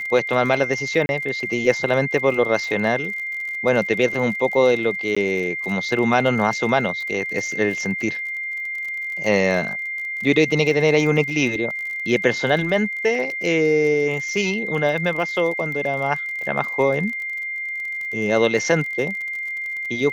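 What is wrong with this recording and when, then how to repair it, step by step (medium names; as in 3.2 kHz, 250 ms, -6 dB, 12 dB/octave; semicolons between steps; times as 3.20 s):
crackle 38 per s -29 dBFS
whine 2.1 kHz -25 dBFS
1.06–1.09 s: dropout 31 ms
5.15–5.17 s: dropout 15 ms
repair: de-click; band-stop 2.1 kHz, Q 30; interpolate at 1.06 s, 31 ms; interpolate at 5.15 s, 15 ms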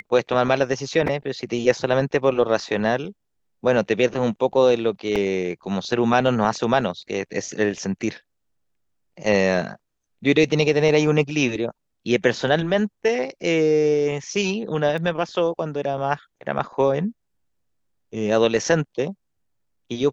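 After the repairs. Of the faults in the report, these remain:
nothing left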